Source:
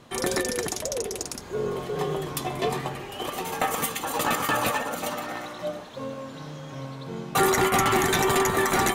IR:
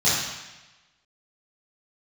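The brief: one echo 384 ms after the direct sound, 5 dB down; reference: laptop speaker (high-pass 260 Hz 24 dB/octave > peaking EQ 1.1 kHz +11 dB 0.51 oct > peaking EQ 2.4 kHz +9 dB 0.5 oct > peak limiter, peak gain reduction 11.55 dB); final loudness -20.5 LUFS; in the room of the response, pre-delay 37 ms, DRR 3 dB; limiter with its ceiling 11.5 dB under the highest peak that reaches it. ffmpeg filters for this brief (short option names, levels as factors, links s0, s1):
-filter_complex "[0:a]alimiter=limit=0.0708:level=0:latency=1,aecho=1:1:384:0.562,asplit=2[s0][s1];[1:a]atrim=start_sample=2205,adelay=37[s2];[s1][s2]afir=irnorm=-1:irlink=0,volume=0.106[s3];[s0][s3]amix=inputs=2:normalize=0,highpass=f=260:w=0.5412,highpass=f=260:w=1.3066,equalizer=f=1100:t=o:w=0.51:g=11,equalizer=f=2400:t=o:w=0.5:g=9,volume=3.35,alimiter=limit=0.251:level=0:latency=1"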